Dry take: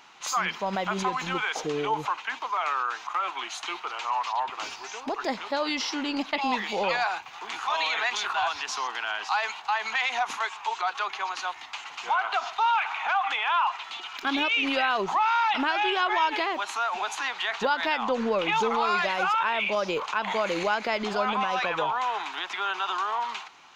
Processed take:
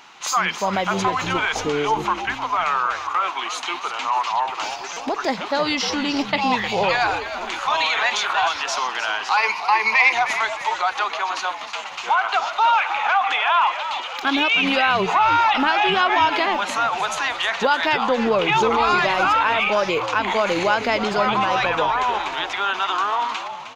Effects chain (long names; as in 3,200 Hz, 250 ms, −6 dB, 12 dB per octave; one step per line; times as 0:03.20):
0:09.37–0:10.13: EQ curve with evenly spaced ripples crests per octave 0.86, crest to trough 17 dB
on a send: echo with shifted repeats 309 ms, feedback 41%, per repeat −86 Hz, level −10.5 dB
on the sum: buffer that repeats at 0:04.93, samples 256, times 5
level +6.5 dB